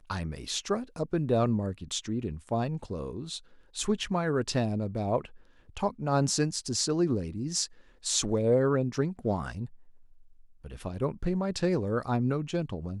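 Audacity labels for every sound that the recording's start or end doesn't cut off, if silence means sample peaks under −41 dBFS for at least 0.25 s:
3.750000	5.270000	sound
5.700000	7.660000	sound
8.040000	9.660000	sound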